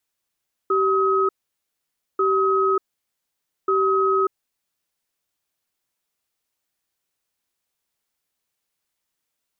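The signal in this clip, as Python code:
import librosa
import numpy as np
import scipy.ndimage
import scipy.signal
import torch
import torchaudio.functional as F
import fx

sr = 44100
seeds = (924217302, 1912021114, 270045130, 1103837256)

y = fx.cadence(sr, length_s=3.76, low_hz=386.0, high_hz=1270.0, on_s=0.59, off_s=0.9, level_db=-19.0)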